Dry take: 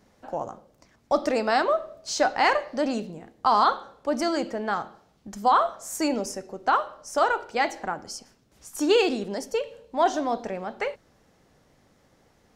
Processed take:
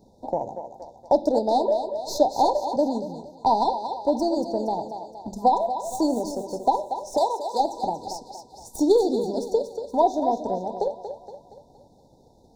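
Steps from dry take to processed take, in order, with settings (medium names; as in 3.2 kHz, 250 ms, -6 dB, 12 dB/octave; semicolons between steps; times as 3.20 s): tracing distortion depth 0.035 ms; FFT band-reject 1–3.5 kHz; in parallel at -0.5 dB: compression, threshold -36 dBFS, peak gain reduction 18 dB; 7.17–7.60 s: on the sum: RIAA curve recording; on a send: thinning echo 234 ms, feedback 54%, high-pass 340 Hz, level -7 dB; on the sum: transient shaper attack +4 dB, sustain -1 dB; peaking EQ 13 kHz -9.5 dB 2.6 oct; hum notches 50/100/150/200 Hz; 2.76–3.66 s: three bands expanded up and down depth 40%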